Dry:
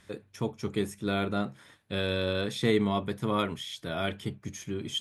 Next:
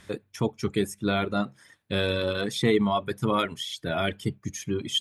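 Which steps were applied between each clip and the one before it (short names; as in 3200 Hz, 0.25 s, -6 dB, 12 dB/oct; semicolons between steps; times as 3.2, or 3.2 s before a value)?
reverb removal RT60 1.6 s; in parallel at +1 dB: limiter -21.5 dBFS, peak gain reduction 9.5 dB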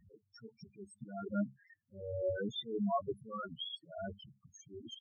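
auto swell 0.364 s; loudest bins only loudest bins 4; gain -4.5 dB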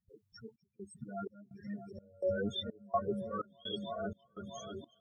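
repeats that get brighter 0.322 s, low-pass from 200 Hz, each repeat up 2 oct, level -6 dB; step gate ".xxxxxx.." 189 bpm -24 dB; gain +2.5 dB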